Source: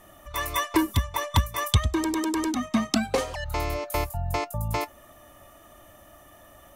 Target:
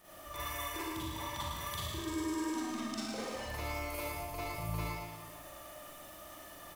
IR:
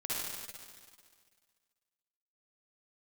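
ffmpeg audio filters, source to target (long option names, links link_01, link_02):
-filter_complex "[0:a]lowshelf=frequency=110:gain=-7.5,acompressor=threshold=-40dB:ratio=4,aeval=exprs='val(0)*gte(abs(val(0)),0.00237)':channel_layout=same,aecho=1:1:110:0.447[link_01];[1:a]atrim=start_sample=2205,asetrate=57330,aresample=44100[link_02];[link_01][link_02]afir=irnorm=-1:irlink=0"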